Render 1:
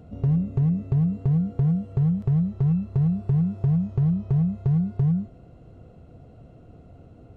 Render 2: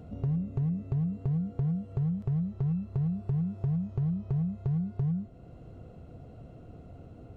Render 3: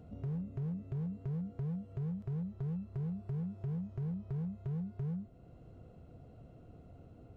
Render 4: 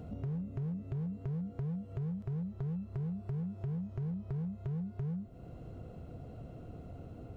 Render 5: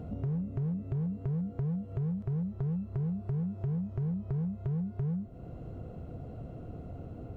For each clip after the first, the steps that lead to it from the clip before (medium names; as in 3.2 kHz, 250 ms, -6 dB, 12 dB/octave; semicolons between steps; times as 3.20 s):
compression 1.5:1, threshold -41 dBFS, peak gain reduction 8 dB
hard clipper -27 dBFS, distortion -17 dB; trim -7 dB
compression 2:1, threshold -49 dBFS, peak gain reduction 7.5 dB; trim +8 dB
treble shelf 2.1 kHz -8 dB; trim +4.5 dB